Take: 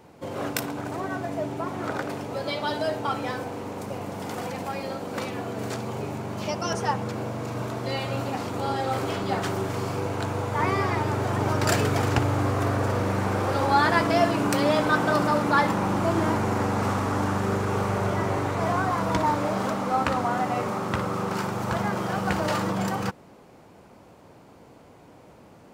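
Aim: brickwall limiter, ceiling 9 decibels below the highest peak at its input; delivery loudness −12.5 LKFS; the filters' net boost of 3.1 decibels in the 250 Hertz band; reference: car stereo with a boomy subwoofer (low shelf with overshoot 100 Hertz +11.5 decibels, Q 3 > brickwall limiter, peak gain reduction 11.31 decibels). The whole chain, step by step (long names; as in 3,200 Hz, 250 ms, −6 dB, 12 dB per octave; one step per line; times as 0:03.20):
parametric band 250 Hz +7 dB
brickwall limiter −15.5 dBFS
low shelf with overshoot 100 Hz +11.5 dB, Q 3
level +18.5 dB
brickwall limiter −4 dBFS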